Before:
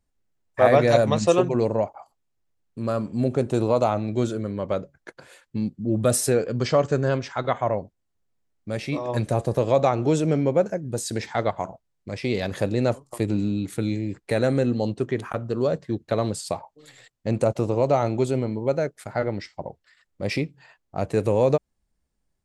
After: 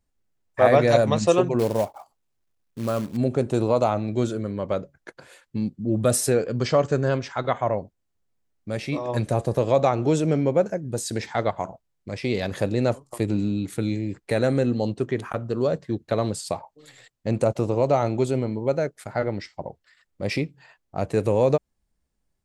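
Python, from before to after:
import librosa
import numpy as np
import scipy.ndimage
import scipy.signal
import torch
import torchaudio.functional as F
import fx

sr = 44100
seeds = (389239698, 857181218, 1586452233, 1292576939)

y = fx.quant_float(x, sr, bits=2, at=(1.59, 3.17))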